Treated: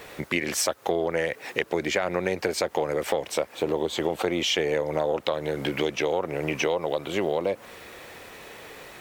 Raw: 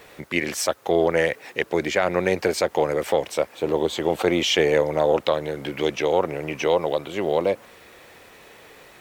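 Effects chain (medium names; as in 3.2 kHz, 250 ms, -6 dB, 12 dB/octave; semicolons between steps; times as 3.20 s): compression, threshold -26 dBFS, peak gain reduction 11.5 dB; trim +4 dB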